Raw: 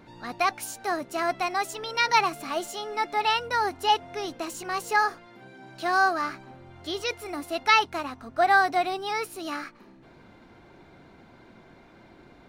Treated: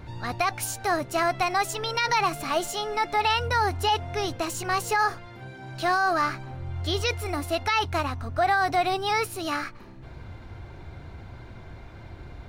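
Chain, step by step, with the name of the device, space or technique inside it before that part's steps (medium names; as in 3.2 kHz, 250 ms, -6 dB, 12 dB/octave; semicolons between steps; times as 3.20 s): car stereo with a boomy subwoofer (resonant low shelf 140 Hz +13.5 dB, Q 1.5; peak limiter -19.5 dBFS, peak gain reduction 12 dB); trim +5 dB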